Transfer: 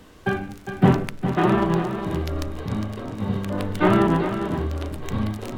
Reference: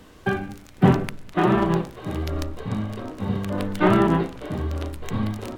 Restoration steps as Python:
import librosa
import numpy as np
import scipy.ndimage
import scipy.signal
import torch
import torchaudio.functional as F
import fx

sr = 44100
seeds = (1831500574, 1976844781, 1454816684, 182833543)

y = fx.fix_echo_inverse(x, sr, delay_ms=407, level_db=-9.0)